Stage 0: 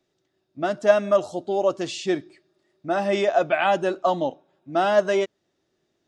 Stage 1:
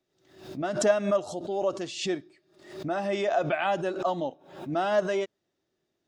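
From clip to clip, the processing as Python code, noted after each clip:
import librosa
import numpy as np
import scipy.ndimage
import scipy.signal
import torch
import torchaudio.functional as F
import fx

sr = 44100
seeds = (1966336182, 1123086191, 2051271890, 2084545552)

y = fx.pre_swell(x, sr, db_per_s=94.0)
y = y * 10.0 ** (-6.5 / 20.0)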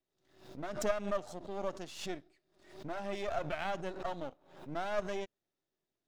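y = np.where(x < 0.0, 10.0 ** (-12.0 / 20.0) * x, x)
y = fx.peak_eq(y, sr, hz=340.0, db=-3.0, octaves=0.24)
y = y * 10.0 ** (-7.0 / 20.0)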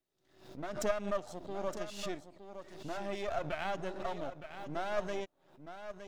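y = x + 10.0 ** (-10.5 / 20.0) * np.pad(x, (int(915 * sr / 1000.0), 0))[:len(x)]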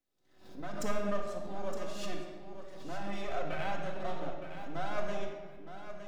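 y = fx.room_shoebox(x, sr, seeds[0], volume_m3=1800.0, walls='mixed', distance_m=2.0)
y = y * 10.0 ** (-3.0 / 20.0)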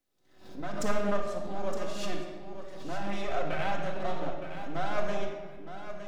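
y = fx.doppler_dist(x, sr, depth_ms=0.18)
y = y * 10.0 ** (4.5 / 20.0)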